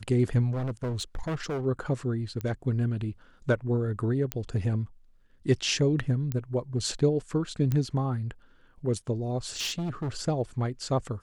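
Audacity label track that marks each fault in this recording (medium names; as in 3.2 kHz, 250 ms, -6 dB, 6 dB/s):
0.510000	1.660000	clipped -27.5 dBFS
2.410000	2.410000	pop -21 dBFS
4.320000	4.320000	pop -12 dBFS
6.320000	6.320000	pop -18 dBFS
7.720000	7.720000	pop -16 dBFS
9.490000	10.090000	clipped -27.5 dBFS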